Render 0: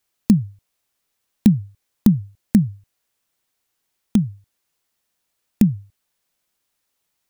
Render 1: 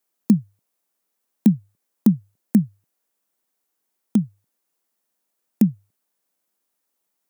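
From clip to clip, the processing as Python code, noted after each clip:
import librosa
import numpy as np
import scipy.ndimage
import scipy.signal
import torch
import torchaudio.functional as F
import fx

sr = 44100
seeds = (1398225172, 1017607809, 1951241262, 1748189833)

y = scipy.signal.sosfilt(scipy.signal.butter(4, 180.0, 'highpass', fs=sr, output='sos'), x)
y = fx.peak_eq(y, sr, hz=3200.0, db=-8.0, octaves=2.4)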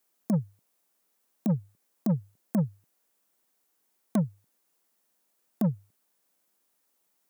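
y = fx.over_compress(x, sr, threshold_db=-15.0, ratio=-0.5)
y = 10.0 ** (-20.5 / 20.0) * np.tanh(y / 10.0 ** (-20.5 / 20.0))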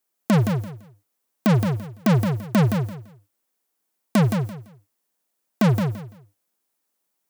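y = fx.leveller(x, sr, passes=5)
y = fx.echo_feedback(y, sr, ms=169, feedback_pct=22, wet_db=-6)
y = y * librosa.db_to_amplitude(6.0)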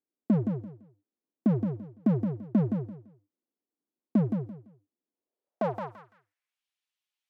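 y = fx.filter_sweep_bandpass(x, sr, from_hz=280.0, to_hz=3000.0, start_s=5.07, end_s=6.64, q=2.2)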